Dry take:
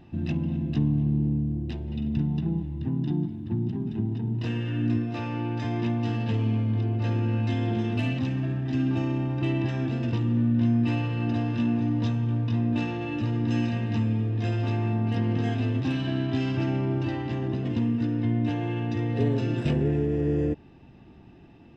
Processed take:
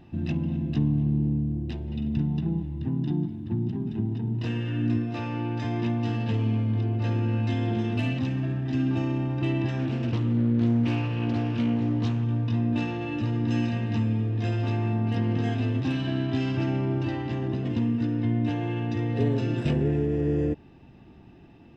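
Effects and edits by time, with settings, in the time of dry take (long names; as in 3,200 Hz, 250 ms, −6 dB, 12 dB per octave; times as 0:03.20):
0:09.78–0:12.24: highs frequency-modulated by the lows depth 0.29 ms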